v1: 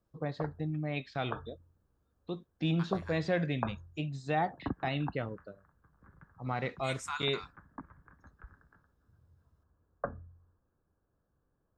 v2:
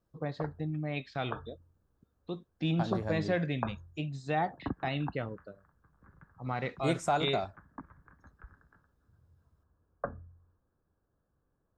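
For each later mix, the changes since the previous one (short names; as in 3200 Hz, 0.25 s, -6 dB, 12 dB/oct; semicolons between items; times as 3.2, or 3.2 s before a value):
second voice: remove elliptic high-pass 1000 Hz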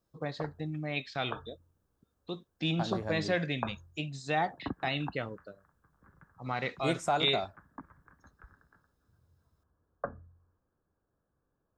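first voice: add high shelf 2400 Hz +9.5 dB; master: add low shelf 150 Hz -5 dB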